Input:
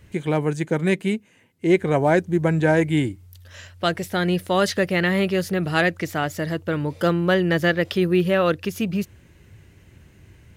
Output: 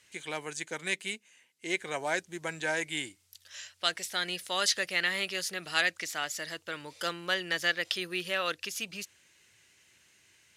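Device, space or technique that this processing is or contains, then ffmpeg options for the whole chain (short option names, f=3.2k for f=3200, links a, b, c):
piezo pickup straight into a mixer: -af "lowpass=7k,aderivative,volume=6.5dB"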